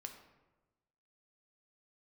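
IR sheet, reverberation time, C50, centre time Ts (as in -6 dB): 1.1 s, 7.5 dB, 21 ms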